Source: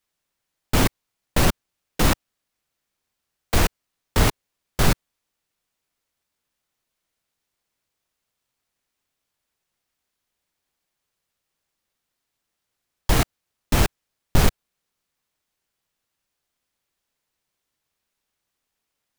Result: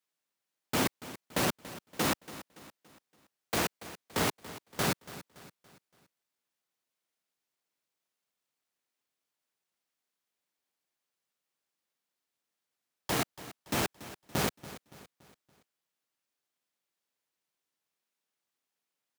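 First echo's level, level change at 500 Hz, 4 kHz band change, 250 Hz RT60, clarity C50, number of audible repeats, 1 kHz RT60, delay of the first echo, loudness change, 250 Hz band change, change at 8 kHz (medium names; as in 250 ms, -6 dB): -16.0 dB, -7.5 dB, -7.5 dB, no reverb, no reverb, 3, no reverb, 284 ms, -9.5 dB, -9.0 dB, -7.5 dB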